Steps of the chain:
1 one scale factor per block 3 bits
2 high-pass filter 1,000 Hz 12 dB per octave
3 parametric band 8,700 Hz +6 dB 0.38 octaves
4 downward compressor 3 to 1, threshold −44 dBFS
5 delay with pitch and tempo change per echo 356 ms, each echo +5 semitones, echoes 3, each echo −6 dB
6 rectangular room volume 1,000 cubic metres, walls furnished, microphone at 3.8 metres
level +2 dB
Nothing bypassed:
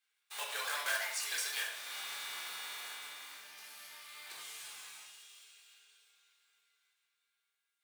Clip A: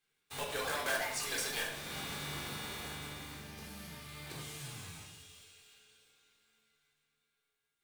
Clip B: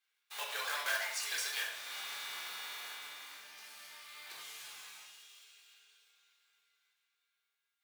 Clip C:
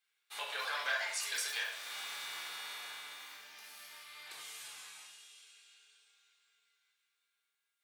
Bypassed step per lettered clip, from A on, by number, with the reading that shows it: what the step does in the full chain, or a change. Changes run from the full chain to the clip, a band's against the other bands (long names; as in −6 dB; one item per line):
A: 2, 250 Hz band +24.0 dB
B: 3, 8 kHz band −2.0 dB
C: 1, distortion level −8 dB